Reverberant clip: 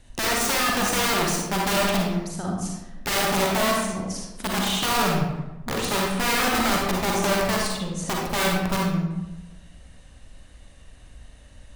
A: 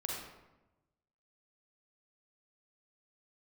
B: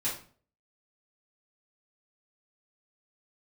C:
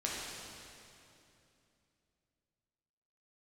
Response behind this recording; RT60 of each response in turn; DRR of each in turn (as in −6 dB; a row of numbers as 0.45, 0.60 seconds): A; 1.0, 0.45, 2.8 seconds; −2.5, −10.0, −5.5 decibels